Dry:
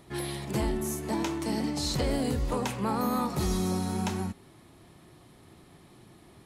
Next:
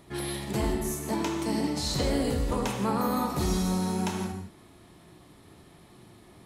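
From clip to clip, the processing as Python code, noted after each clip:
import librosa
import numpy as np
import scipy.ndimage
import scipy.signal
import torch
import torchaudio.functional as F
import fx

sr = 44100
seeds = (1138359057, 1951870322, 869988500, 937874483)

y = fx.rev_gated(x, sr, seeds[0], gate_ms=190, shape='flat', drr_db=4.0)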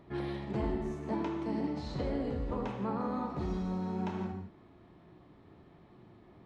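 y = fx.spacing_loss(x, sr, db_at_10k=35)
y = fx.rider(y, sr, range_db=4, speed_s=0.5)
y = fx.low_shelf(y, sr, hz=160.0, db=-3.5)
y = F.gain(torch.from_numpy(y), -3.5).numpy()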